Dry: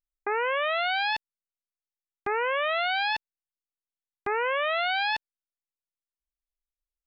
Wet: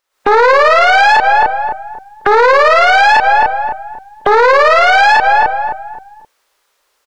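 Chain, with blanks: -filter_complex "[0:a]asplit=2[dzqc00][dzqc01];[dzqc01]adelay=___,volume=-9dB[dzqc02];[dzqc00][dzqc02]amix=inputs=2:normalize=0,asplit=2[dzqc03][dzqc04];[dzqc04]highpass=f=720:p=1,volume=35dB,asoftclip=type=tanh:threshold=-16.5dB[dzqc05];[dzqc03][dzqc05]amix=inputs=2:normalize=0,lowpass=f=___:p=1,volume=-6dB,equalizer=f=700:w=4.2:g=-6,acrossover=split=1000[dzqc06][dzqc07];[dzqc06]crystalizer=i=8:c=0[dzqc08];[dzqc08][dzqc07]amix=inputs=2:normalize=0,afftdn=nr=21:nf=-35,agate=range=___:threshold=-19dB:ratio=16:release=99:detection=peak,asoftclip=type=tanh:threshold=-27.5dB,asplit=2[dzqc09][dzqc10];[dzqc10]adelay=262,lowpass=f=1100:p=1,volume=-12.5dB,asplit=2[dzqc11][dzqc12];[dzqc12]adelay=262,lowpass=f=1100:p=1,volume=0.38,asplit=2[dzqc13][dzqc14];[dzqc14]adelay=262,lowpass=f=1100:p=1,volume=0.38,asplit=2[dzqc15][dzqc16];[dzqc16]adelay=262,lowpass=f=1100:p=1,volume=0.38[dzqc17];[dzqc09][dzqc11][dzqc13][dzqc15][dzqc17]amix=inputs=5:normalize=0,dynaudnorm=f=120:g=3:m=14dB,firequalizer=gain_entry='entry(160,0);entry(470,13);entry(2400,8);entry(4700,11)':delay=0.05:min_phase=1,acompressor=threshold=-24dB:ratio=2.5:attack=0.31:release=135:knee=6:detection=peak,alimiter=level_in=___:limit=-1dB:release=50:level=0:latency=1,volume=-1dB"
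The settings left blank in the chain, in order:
34, 2200, -9dB, 19.5dB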